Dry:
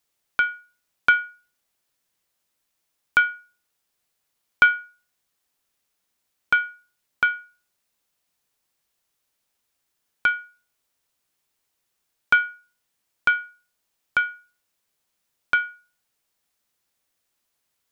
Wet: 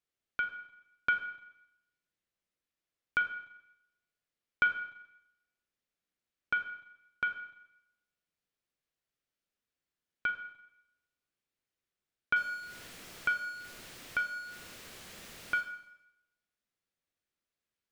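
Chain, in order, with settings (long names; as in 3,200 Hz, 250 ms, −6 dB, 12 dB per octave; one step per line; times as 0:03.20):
0:12.36–0:15.61: converter with a step at zero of −27 dBFS
low-pass filter 2,200 Hz 6 dB per octave
parametric band 900 Hz −7.5 dB 0.83 octaves
four-comb reverb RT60 0.84 s, combs from 33 ms, DRR 7 dB
level −8.5 dB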